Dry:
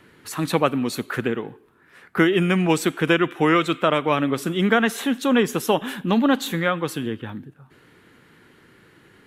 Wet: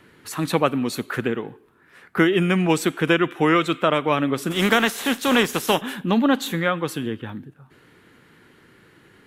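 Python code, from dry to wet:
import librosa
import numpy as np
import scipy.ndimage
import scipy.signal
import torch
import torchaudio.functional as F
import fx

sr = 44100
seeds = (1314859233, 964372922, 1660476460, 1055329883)

y = fx.spec_flatten(x, sr, power=0.64, at=(4.5, 5.8), fade=0.02)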